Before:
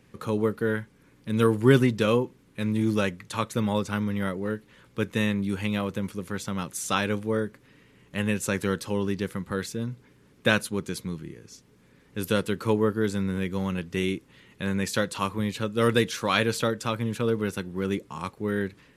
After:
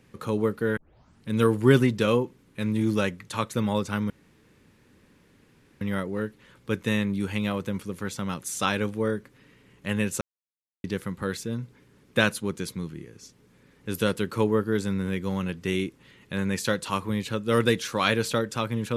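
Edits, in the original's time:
0.77 tape start 0.52 s
4.1 insert room tone 1.71 s
8.5–9.13 mute

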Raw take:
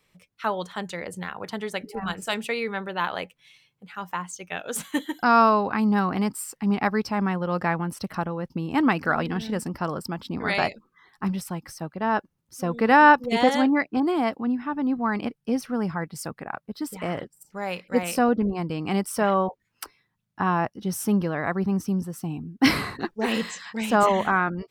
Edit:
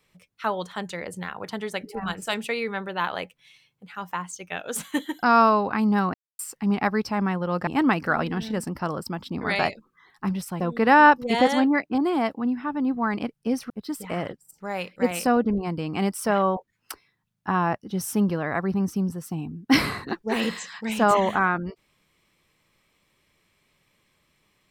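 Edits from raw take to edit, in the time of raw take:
6.14–6.39 mute
7.67–8.66 cut
11.59–12.62 cut
15.72–16.62 cut

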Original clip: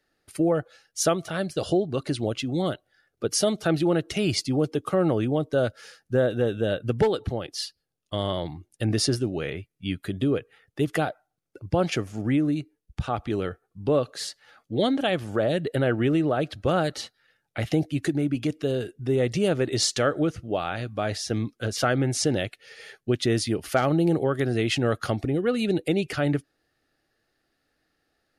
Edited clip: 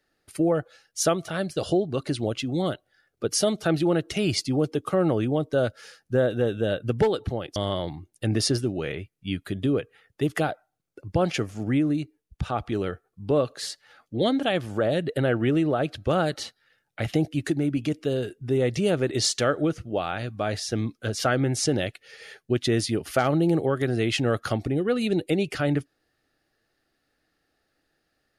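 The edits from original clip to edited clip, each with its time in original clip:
7.56–8.14 cut

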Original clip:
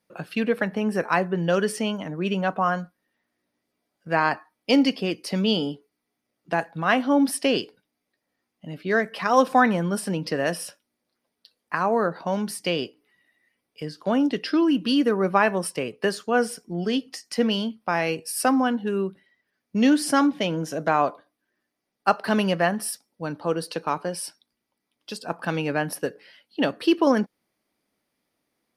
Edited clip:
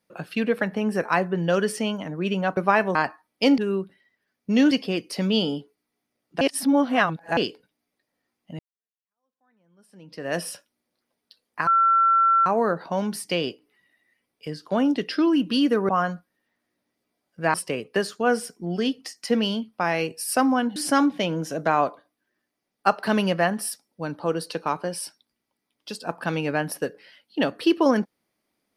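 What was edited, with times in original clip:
2.57–4.22 swap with 15.24–15.62
6.55–7.51 reverse
8.73–10.51 fade in exponential
11.81 add tone 1350 Hz -15 dBFS 0.79 s
18.84–19.97 move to 4.85

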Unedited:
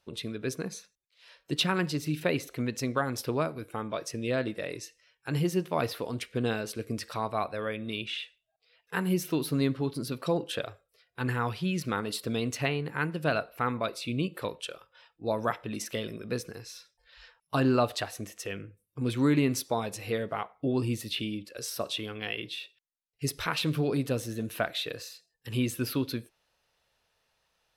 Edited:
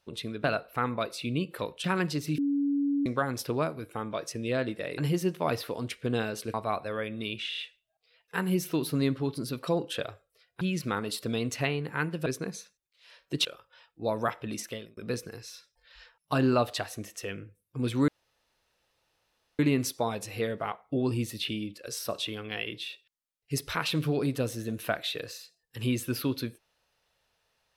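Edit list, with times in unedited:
0.44–1.63 swap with 13.27–14.67
2.17–2.85 bleep 283 Hz -24 dBFS
4.77–5.29 cut
6.85–7.22 cut
8.17 stutter 0.03 s, 4 plays
11.2–11.62 cut
15.8–16.19 fade out linear
19.3 insert room tone 1.51 s

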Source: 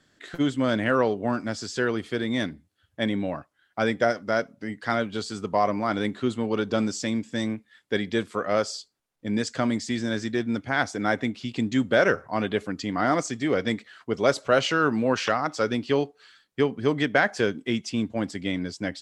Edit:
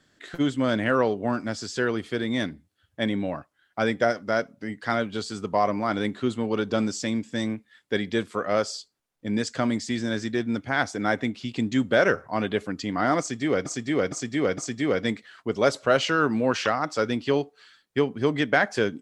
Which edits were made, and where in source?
13.2–13.66 loop, 4 plays

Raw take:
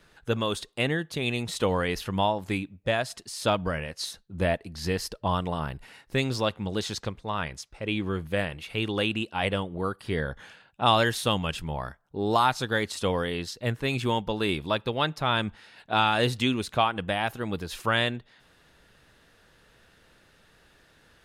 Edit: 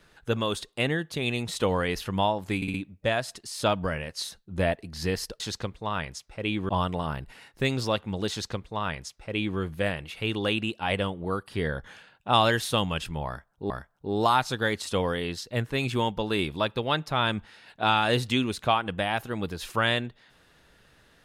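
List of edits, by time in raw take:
2.56 stutter 0.06 s, 4 plays
6.83–8.12 copy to 5.22
11.8–12.23 loop, 2 plays

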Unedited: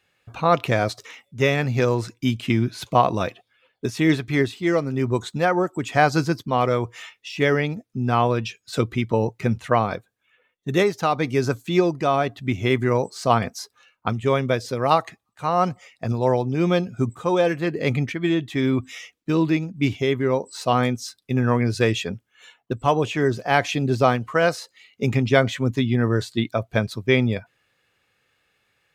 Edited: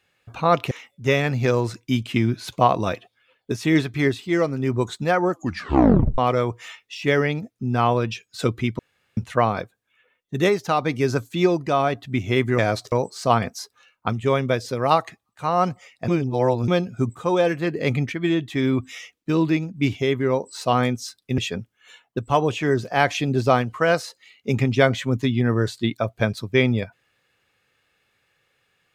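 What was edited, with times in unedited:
0.71–1.05 move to 12.92
5.64 tape stop 0.88 s
9.13–9.51 room tone
16.08–16.68 reverse
21.38–21.92 cut

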